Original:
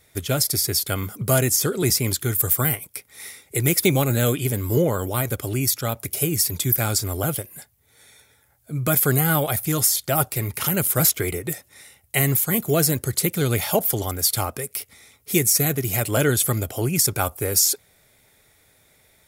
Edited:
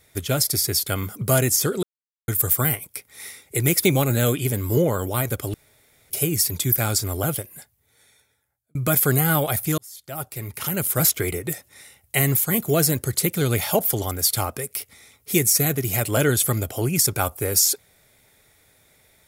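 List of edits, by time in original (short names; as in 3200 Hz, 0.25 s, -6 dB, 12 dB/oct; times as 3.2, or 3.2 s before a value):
1.83–2.28 mute
5.54–6.1 room tone
7.33–8.75 fade out
9.78–11.16 fade in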